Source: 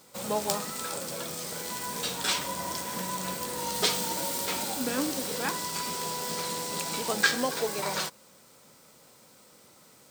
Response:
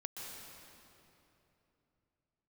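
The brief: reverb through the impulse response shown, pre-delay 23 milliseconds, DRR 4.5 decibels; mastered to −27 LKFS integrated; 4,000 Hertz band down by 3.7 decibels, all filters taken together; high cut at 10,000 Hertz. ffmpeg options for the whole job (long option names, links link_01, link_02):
-filter_complex "[0:a]lowpass=10000,equalizer=frequency=4000:width_type=o:gain=-4.5,asplit=2[link_01][link_02];[1:a]atrim=start_sample=2205,adelay=23[link_03];[link_02][link_03]afir=irnorm=-1:irlink=0,volume=-3.5dB[link_04];[link_01][link_04]amix=inputs=2:normalize=0,volume=3.5dB"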